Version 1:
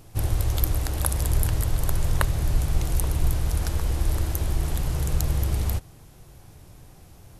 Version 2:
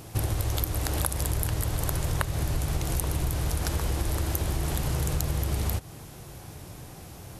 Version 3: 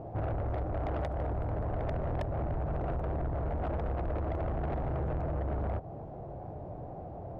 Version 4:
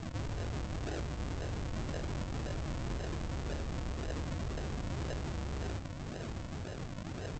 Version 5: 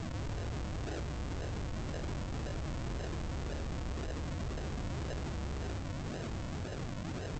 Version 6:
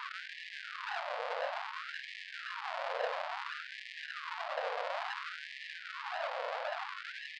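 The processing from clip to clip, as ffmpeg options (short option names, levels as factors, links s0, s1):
-af "highpass=f=98:p=1,acompressor=threshold=0.0251:ratio=6,volume=2.51"
-af "lowpass=f=670:t=q:w=3.7,asoftclip=type=tanh:threshold=0.0335"
-filter_complex "[0:a]alimiter=level_in=6.68:limit=0.0631:level=0:latency=1:release=79,volume=0.15,aresample=16000,acrusher=samples=27:mix=1:aa=0.000001:lfo=1:lforange=27:lforate=1.9,aresample=44100,asplit=2[s0][s1];[s1]adelay=22,volume=0.224[s2];[s0][s2]amix=inputs=2:normalize=0,volume=2.11"
-af "alimiter=level_in=6.31:limit=0.0631:level=0:latency=1:release=11,volume=0.158,volume=2.11"
-af "aresample=11025,aresample=44100,adynamicsmooth=sensitivity=3:basefreq=2200,afftfilt=real='re*gte(b*sr/1024,450*pow(1700/450,0.5+0.5*sin(2*PI*0.58*pts/sr)))':imag='im*gte(b*sr/1024,450*pow(1700/450,0.5+0.5*sin(2*PI*0.58*pts/sr)))':win_size=1024:overlap=0.75,volume=4.22"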